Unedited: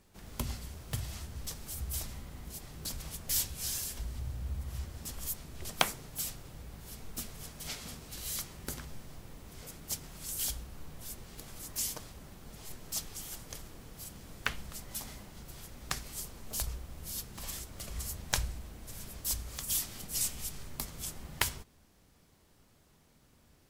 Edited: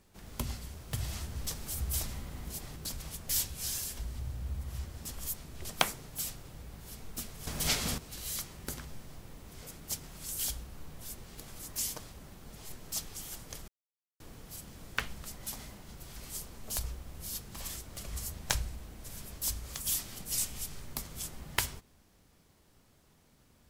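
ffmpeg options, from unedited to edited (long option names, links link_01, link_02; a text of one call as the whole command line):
ffmpeg -i in.wav -filter_complex "[0:a]asplit=7[link_01][link_02][link_03][link_04][link_05][link_06][link_07];[link_01]atrim=end=1.002[link_08];[link_02]atrim=start=0.998:end=2.762,asetpts=PTS-STARTPTS,volume=3.5dB[link_09];[link_03]atrim=start=2.758:end=7.472[link_10];[link_04]atrim=start=7.468:end=7.982,asetpts=PTS-STARTPTS,volume=11dB[link_11];[link_05]atrim=start=7.978:end=13.68,asetpts=PTS-STARTPTS,afade=type=out:start_time=5.698:duration=0.004:curve=hsin,apad=pad_dur=0.52[link_12];[link_06]atrim=start=13.68:end=15.642,asetpts=PTS-STARTPTS,afade=type=in:duration=0.004:curve=hsin[link_13];[link_07]atrim=start=15.988[link_14];[link_08][link_09]acrossfade=duration=0.004:curve1=hsin:curve2=hsin[link_15];[link_15][link_10]acrossfade=duration=0.004:curve1=hsin:curve2=hsin[link_16];[link_16][link_11]acrossfade=duration=0.004:curve1=hsin:curve2=hsin[link_17];[link_12][link_13]concat=n=2:v=0:a=1[link_18];[link_17][link_18]acrossfade=duration=0.004:curve1=hsin:curve2=hsin[link_19];[link_19][link_14]acrossfade=duration=0.004:curve1=hsin:curve2=hsin" out.wav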